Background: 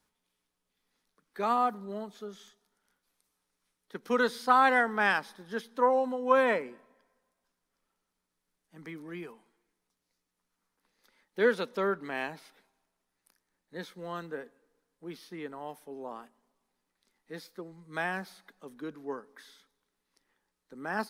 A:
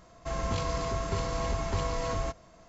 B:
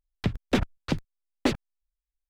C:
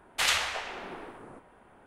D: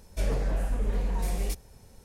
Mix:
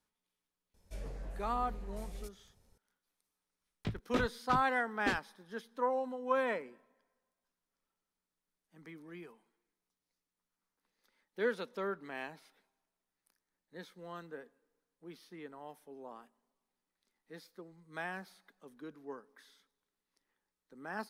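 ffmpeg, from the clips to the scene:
ffmpeg -i bed.wav -i cue0.wav -i cue1.wav -i cue2.wav -i cue3.wav -filter_complex "[0:a]volume=-8dB[link_01];[4:a]aresample=32000,aresample=44100[link_02];[2:a]asplit=2[link_03][link_04];[link_04]adelay=19,volume=-4dB[link_05];[link_03][link_05]amix=inputs=2:normalize=0[link_06];[link_02]atrim=end=2.04,asetpts=PTS-STARTPTS,volume=-16dB,afade=type=in:duration=0.004:curve=hsin,afade=type=out:start_time=2.036:duration=0.004:curve=hsin,adelay=740[link_07];[link_06]atrim=end=2.29,asetpts=PTS-STARTPTS,volume=-12.5dB,afade=type=in:duration=0.004:curve=hsin,afade=type=out:start_time=2.286:duration=0.004:curve=hsin,adelay=159201S[link_08];[link_01][link_07][link_08]amix=inputs=3:normalize=0" out.wav

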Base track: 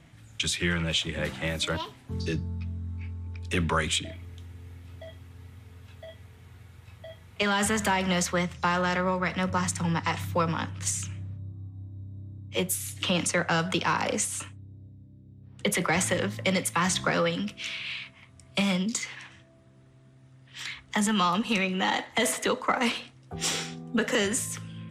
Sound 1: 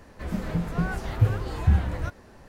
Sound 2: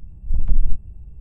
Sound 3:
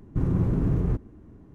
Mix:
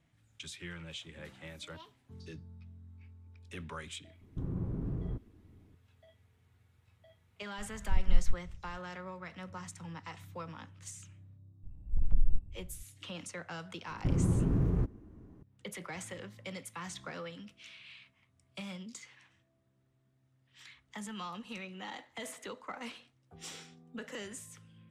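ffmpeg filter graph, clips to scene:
ffmpeg -i bed.wav -i cue0.wav -i cue1.wav -i cue2.wav -filter_complex "[3:a]asplit=2[link_01][link_02];[2:a]asplit=2[link_03][link_04];[0:a]volume=-17.5dB[link_05];[link_01]lowpass=frequency=1300:poles=1[link_06];[link_03]tremolo=f=5.3:d=0.82[link_07];[link_06]atrim=end=1.54,asetpts=PTS-STARTPTS,volume=-12.5dB,afade=type=in:duration=0.004:curve=hsin,afade=type=out:start_time=1.536:duration=0.004:curve=hsin,adelay=185661S[link_08];[link_07]atrim=end=1.2,asetpts=PTS-STARTPTS,volume=-7dB,afade=type=in:duration=0.004:curve=hsin,afade=type=out:start_time=1.196:duration=0.004:curve=hsin,adelay=7580[link_09];[link_04]atrim=end=1.2,asetpts=PTS-STARTPTS,volume=-10dB,afade=type=in:duration=0.004:curve=hsin,afade=type=out:start_time=1.196:duration=0.004:curve=hsin,adelay=11630[link_10];[link_02]atrim=end=1.54,asetpts=PTS-STARTPTS,volume=-5dB,afade=type=in:duration=0.004:curve=hsin,afade=type=out:start_time=1.536:duration=0.004:curve=hsin,adelay=13890[link_11];[link_05][link_08][link_09][link_10][link_11]amix=inputs=5:normalize=0" out.wav

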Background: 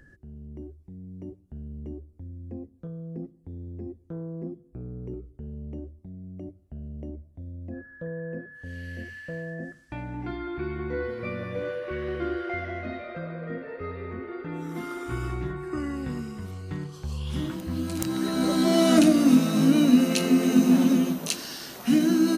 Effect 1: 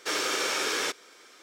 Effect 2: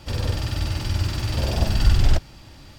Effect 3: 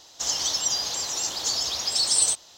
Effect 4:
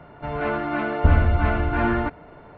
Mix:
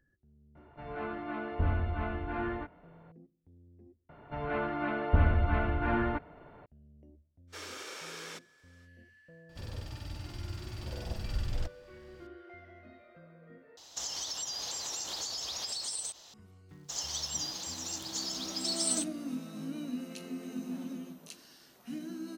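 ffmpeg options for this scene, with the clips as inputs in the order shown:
ffmpeg -i bed.wav -i cue0.wav -i cue1.wav -i cue2.wav -i cue3.wav -filter_complex "[4:a]asplit=2[link_01][link_02];[3:a]asplit=2[link_03][link_04];[0:a]volume=-20dB[link_05];[link_01]asplit=2[link_06][link_07];[link_07]adelay=23,volume=-3.5dB[link_08];[link_06][link_08]amix=inputs=2:normalize=0[link_09];[link_03]acompressor=threshold=-32dB:ratio=10:attack=11:release=132:knee=1:detection=peak[link_10];[link_04]aeval=exprs='sgn(val(0))*max(abs(val(0))-0.00473,0)':channel_layout=same[link_11];[link_05]asplit=3[link_12][link_13][link_14];[link_12]atrim=end=4.094[link_15];[link_02]atrim=end=2.57,asetpts=PTS-STARTPTS,volume=-8dB[link_16];[link_13]atrim=start=6.656:end=13.774[link_17];[link_10]atrim=end=2.57,asetpts=PTS-STARTPTS,volume=-3.5dB[link_18];[link_14]atrim=start=16.336[link_19];[link_09]atrim=end=2.57,asetpts=PTS-STARTPTS,volume=-15dB,afade=type=in:duration=0.004:curve=hsin,afade=type=out:start_time=2.566:duration=0.004:curve=hsin,adelay=550[link_20];[1:a]atrim=end=1.42,asetpts=PTS-STARTPTS,volume=-15.5dB,afade=type=in:duration=0.05,afade=type=out:start_time=1.37:duration=0.05,adelay=7470[link_21];[2:a]atrim=end=2.78,asetpts=PTS-STARTPTS,volume=-17dB,afade=type=in:duration=0.004:curve=hsin,afade=type=out:start_time=2.776:duration=0.004:curve=hsin,adelay=9490[link_22];[link_11]atrim=end=2.57,asetpts=PTS-STARTPTS,volume=-10dB,afade=type=in:duration=0.004:curve=hsin,afade=type=out:start_time=2.566:duration=0.004:curve=hsin,adelay=16690[link_23];[link_15][link_16]acrossfade=duration=0.004:curve1=hsin:curve2=hsin[link_24];[link_24][link_17]acrossfade=duration=0.004:curve1=hsin:curve2=hsin[link_25];[link_25][link_18]acrossfade=duration=0.004:curve1=hsin:curve2=hsin[link_26];[link_26][link_19]acrossfade=duration=0.004:curve1=hsin:curve2=hsin[link_27];[link_27][link_20][link_21][link_22][link_23]amix=inputs=5:normalize=0" out.wav

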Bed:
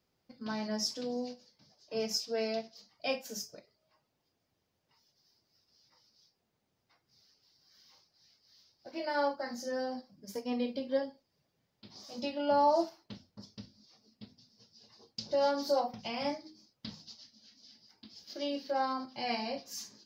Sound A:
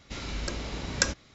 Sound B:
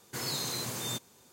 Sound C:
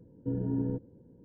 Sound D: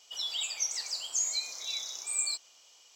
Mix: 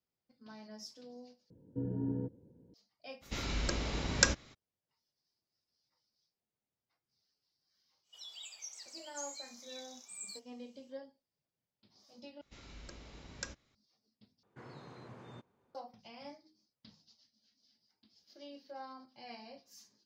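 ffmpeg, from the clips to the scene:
ffmpeg -i bed.wav -i cue0.wav -i cue1.wav -i cue2.wav -i cue3.wav -filter_complex "[1:a]asplit=2[link_01][link_02];[0:a]volume=-15dB[link_03];[3:a]highpass=51[link_04];[2:a]lowpass=1500[link_05];[link_03]asplit=4[link_06][link_07][link_08][link_09];[link_06]atrim=end=1.504[link_10];[link_04]atrim=end=1.24,asetpts=PTS-STARTPTS,volume=-5dB[link_11];[link_07]atrim=start=2.736:end=12.414[link_12];[link_02]atrim=end=1.34,asetpts=PTS-STARTPTS,volume=-17.5dB[link_13];[link_08]atrim=start=13.746:end=14.434[link_14];[link_05]atrim=end=1.32,asetpts=PTS-STARTPTS,volume=-11.5dB[link_15];[link_09]atrim=start=15.746[link_16];[link_01]atrim=end=1.34,asetpts=PTS-STARTPTS,volume=-1dB,afade=type=in:duration=0.02,afade=type=out:start_time=1.32:duration=0.02,adelay=141561S[link_17];[4:a]atrim=end=2.95,asetpts=PTS-STARTPTS,volume=-15dB,afade=type=in:duration=0.1,afade=type=out:start_time=2.85:duration=0.1,adelay=353682S[link_18];[link_10][link_11]acrossfade=duration=0.004:curve1=hsin:curve2=hsin[link_19];[link_19][link_12]acrossfade=duration=0.004:curve1=hsin:curve2=hsin[link_20];[link_20][link_13]acrossfade=duration=0.004:curve1=hsin:curve2=hsin[link_21];[link_21][link_14]acrossfade=duration=0.004:curve1=hsin:curve2=hsin[link_22];[link_22][link_15]acrossfade=duration=0.004:curve1=hsin:curve2=hsin[link_23];[link_23][link_16]acrossfade=duration=0.004:curve1=hsin:curve2=hsin[link_24];[link_24][link_17][link_18]amix=inputs=3:normalize=0" out.wav

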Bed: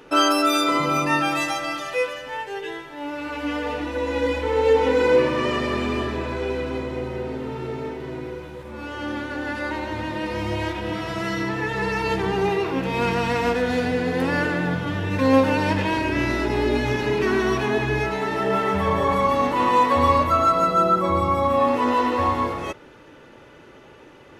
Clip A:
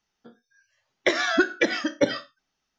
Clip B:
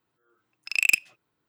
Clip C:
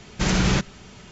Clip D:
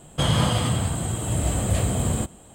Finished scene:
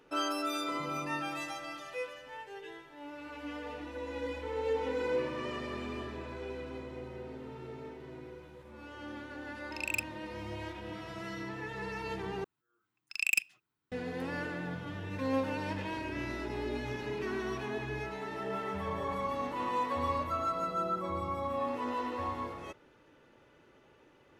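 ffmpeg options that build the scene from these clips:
ffmpeg -i bed.wav -i cue0.wav -i cue1.wav -filter_complex "[2:a]asplit=2[link_01][link_02];[0:a]volume=-15dB[link_03];[link_02]equalizer=frequency=550:width_type=o:width=0.71:gain=-10[link_04];[link_03]asplit=2[link_05][link_06];[link_05]atrim=end=12.444[link_07];[link_04]atrim=end=1.48,asetpts=PTS-STARTPTS,volume=-8dB[link_08];[link_06]atrim=start=13.916[link_09];[link_01]atrim=end=1.48,asetpts=PTS-STARTPTS,volume=-13.5dB,afade=type=in:duration=0.004:curve=hsin,afade=type=out:start_time=1.476:duration=0.004:curve=hsin,adelay=9050[link_10];[link_07][link_08]acrossfade=duration=0.004:curve1=hsin:curve2=hsin[link_11];[link_11][link_09]acrossfade=duration=0.004:curve1=hsin:curve2=hsin[link_12];[link_12][link_10]amix=inputs=2:normalize=0" out.wav

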